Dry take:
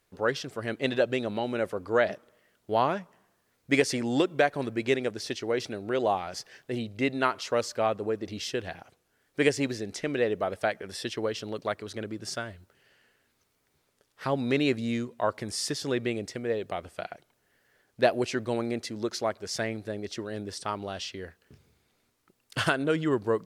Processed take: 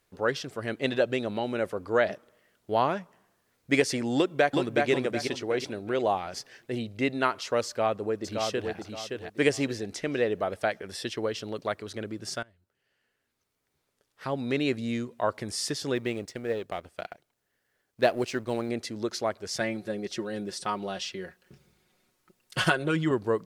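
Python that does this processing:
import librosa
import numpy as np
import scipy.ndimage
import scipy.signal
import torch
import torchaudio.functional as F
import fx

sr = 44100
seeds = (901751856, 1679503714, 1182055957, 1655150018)

y = fx.echo_throw(x, sr, start_s=4.16, length_s=0.74, ms=370, feedback_pct=35, wet_db=-3.0)
y = fx.echo_throw(y, sr, start_s=7.67, length_s=1.05, ms=570, feedback_pct=30, wet_db=-4.5)
y = fx.law_mismatch(y, sr, coded='A', at=(15.95, 18.69))
y = fx.comb(y, sr, ms=5.5, depth=0.7, at=(19.6, 23.11))
y = fx.edit(y, sr, fx.fade_in_from(start_s=12.43, length_s=2.79, floor_db=-22.0), tone=tone)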